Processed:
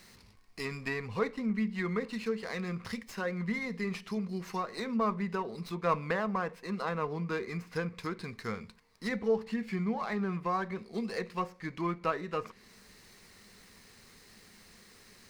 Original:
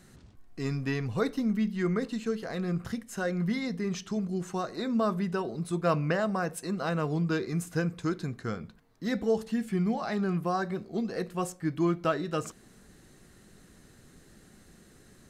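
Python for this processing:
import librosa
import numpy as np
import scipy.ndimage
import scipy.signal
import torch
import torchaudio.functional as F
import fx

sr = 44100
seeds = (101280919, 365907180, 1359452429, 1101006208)

y = fx.tilt_shelf(x, sr, db=-7.5, hz=1100.0)
y = fx.env_lowpass_down(y, sr, base_hz=1800.0, full_db=-30.5)
y = fx.ripple_eq(y, sr, per_octave=0.88, db=8)
y = fx.running_max(y, sr, window=3)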